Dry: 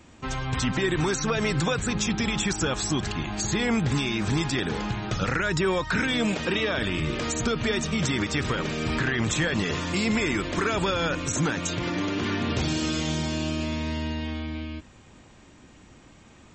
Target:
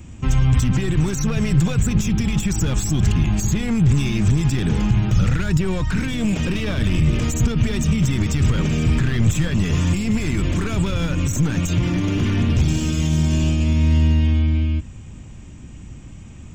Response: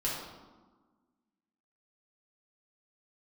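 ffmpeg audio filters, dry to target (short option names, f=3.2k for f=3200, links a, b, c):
-af "aexciter=amount=1.5:drive=3.5:freq=2.3k,aeval=exprs='clip(val(0),-1,0.0562)':c=same,lowshelf=f=210:g=4,alimiter=limit=-19.5dB:level=0:latency=1:release=49,bass=f=250:g=15,treble=f=4k:g=2"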